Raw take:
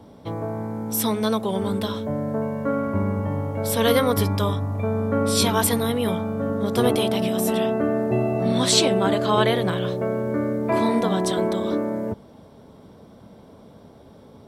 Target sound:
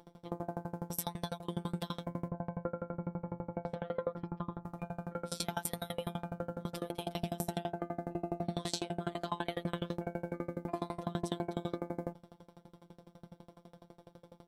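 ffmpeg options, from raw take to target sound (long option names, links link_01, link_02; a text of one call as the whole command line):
ffmpeg -i in.wav -filter_complex "[0:a]asettb=1/sr,asplit=3[link_01][link_02][link_03];[link_01]atrim=end=2.284[link_04];[link_02]atrim=start=2.28:end=4.65,asetpts=PTS-STARTPTS,afade=type=in:duration=0.004:curve=qsin,afade=type=out:start_time=2.366:duration=0.004:curve=qsin,lowpass=1300[link_05];[link_03]atrim=start=4.646[link_06];[link_04][link_05]acrossfade=duration=0.004:curve1=hsin:curve2=qsin[link_07];[link_07][link_06]acrossfade=duration=0.004:curve1=qsin:curve2=hsin,acompressor=threshold=-24dB:ratio=16,afftfilt=real='hypot(re,im)*cos(PI*b)':imag='0':win_size=1024:overlap=0.75,aeval=exprs='val(0)*pow(10,-29*if(lt(mod(12*n/s,1),2*abs(12)/1000),1-mod(12*n/s,1)/(2*abs(12)/1000),(mod(12*n/s,1)-2*abs(12)/1000)/(1-2*abs(12)/1000))/20)':channel_layout=same,volume=2dB" out.wav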